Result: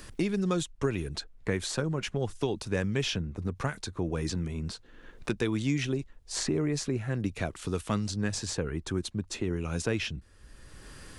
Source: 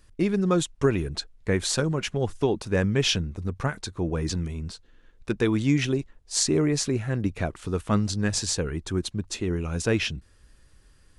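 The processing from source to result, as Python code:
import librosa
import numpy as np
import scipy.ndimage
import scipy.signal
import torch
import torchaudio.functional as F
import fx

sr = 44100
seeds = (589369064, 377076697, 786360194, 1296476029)

y = fx.band_squash(x, sr, depth_pct=70)
y = F.gain(torch.from_numpy(y), -5.5).numpy()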